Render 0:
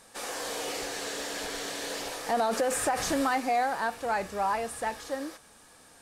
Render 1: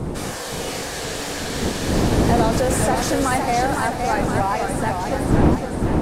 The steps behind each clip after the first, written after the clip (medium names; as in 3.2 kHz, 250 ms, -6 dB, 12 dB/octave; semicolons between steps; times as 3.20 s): wind noise 330 Hz -29 dBFS; modulated delay 512 ms, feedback 57%, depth 143 cents, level -5 dB; trim +5.5 dB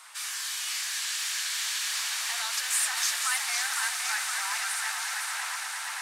Bessel high-pass 2 kHz, order 6; on a send: echo with a slow build-up 114 ms, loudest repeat 8, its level -14 dB